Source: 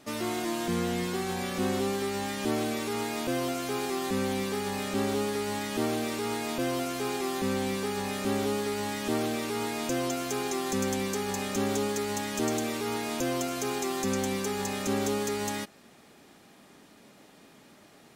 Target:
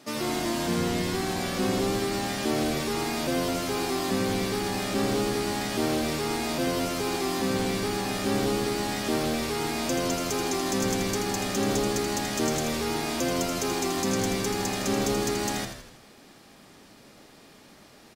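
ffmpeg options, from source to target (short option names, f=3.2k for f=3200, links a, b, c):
-filter_complex "[0:a]highpass=120,equalizer=f=4.9k:t=o:w=0.48:g=4.5,asplit=7[a][b][c][d][e][f][g];[b]adelay=81,afreqshift=-80,volume=-7dB[h];[c]adelay=162,afreqshift=-160,volume=-12.8dB[i];[d]adelay=243,afreqshift=-240,volume=-18.7dB[j];[e]adelay=324,afreqshift=-320,volume=-24.5dB[k];[f]adelay=405,afreqshift=-400,volume=-30.4dB[l];[g]adelay=486,afreqshift=-480,volume=-36.2dB[m];[a][h][i][j][k][l][m]amix=inputs=7:normalize=0,volume=2dB"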